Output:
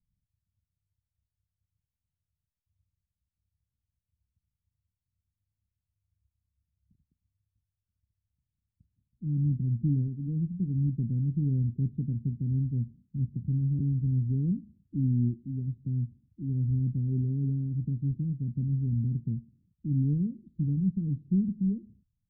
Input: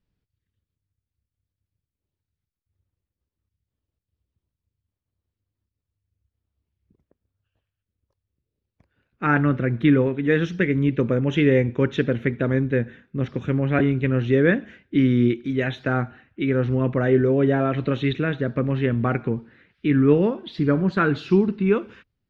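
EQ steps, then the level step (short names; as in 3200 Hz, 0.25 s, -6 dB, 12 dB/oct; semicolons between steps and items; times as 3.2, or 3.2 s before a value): inverse Chebyshev low-pass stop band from 680 Hz, stop band 60 dB; -2.5 dB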